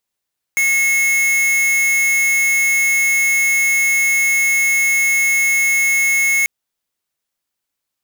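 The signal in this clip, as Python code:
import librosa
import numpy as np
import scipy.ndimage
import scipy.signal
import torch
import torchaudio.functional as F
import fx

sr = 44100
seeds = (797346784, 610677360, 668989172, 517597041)

y = fx.tone(sr, length_s=5.89, wave='square', hz=2180.0, level_db=-15.0)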